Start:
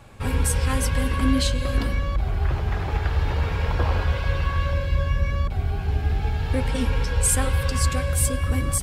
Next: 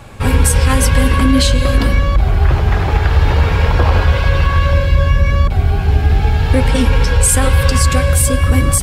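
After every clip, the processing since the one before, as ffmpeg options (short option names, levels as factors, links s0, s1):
-af "alimiter=level_in=4.22:limit=0.891:release=50:level=0:latency=1,volume=0.891"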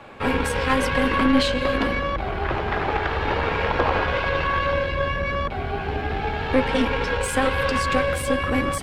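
-filter_complex "[0:a]acrossover=split=220 3700:gain=0.141 1 0.126[s0][s1][s2];[s0][s1][s2]amix=inputs=3:normalize=0,aeval=exprs='0.668*(cos(1*acos(clip(val(0)/0.668,-1,1)))-cos(1*PI/2))+0.0841*(cos(4*acos(clip(val(0)/0.668,-1,1)))-cos(4*PI/2))':c=same,volume=0.75"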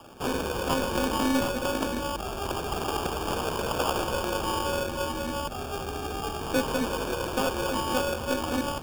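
-filter_complex "[0:a]acrossover=split=200[s0][s1];[s0]asoftclip=type=tanh:threshold=0.0266[s2];[s1]acrusher=samples=22:mix=1:aa=0.000001[s3];[s2][s3]amix=inputs=2:normalize=0,volume=0.531"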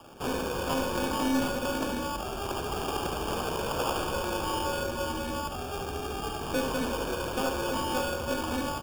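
-filter_complex "[0:a]asplit=2[s0][s1];[s1]asoftclip=type=hard:threshold=0.0447,volume=0.562[s2];[s0][s2]amix=inputs=2:normalize=0,aecho=1:1:72:0.473,volume=0.501"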